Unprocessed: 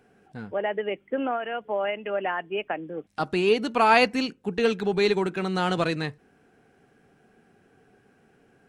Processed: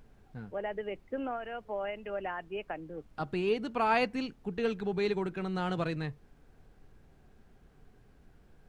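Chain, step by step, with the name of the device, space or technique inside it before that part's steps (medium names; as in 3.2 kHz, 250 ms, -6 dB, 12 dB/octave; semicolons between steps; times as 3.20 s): car interior (peaking EQ 130 Hz +7.5 dB 0.77 oct; treble shelf 4 kHz -8 dB; brown noise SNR 22 dB); trim -8.5 dB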